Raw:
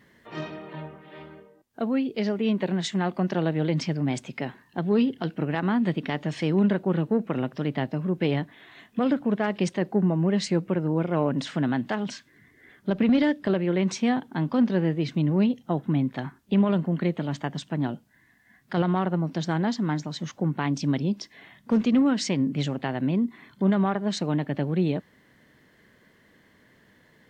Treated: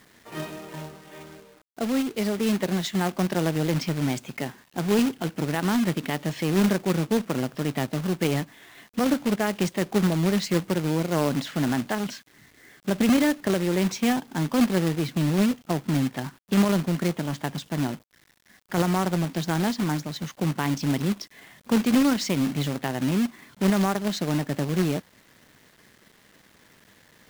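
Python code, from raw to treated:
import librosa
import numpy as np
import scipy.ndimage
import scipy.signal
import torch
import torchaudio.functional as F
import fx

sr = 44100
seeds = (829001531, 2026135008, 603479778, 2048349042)

y = fx.quant_companded(x, sr, bits=4)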